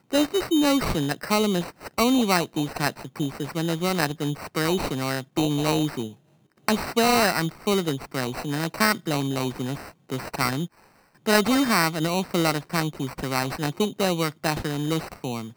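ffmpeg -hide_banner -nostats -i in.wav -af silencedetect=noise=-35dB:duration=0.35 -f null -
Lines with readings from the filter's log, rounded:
silence_start: 6.09
silence_end: 6.68 | silence_duration: 0.59
silence_start: 10.66
silence_end: 11.26 | silence_duration: 0.60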